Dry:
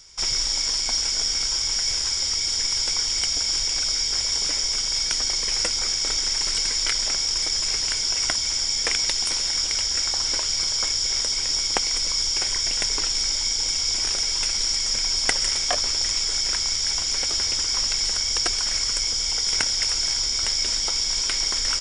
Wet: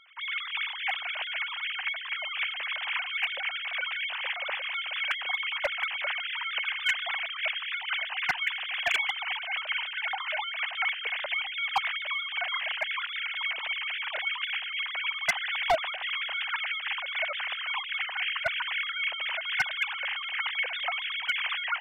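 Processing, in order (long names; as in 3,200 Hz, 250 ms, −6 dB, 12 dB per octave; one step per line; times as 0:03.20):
three sine waves on the formant tracks
hard clipping −11.5 dBFS, distortion −14 dB
level −7.5 dB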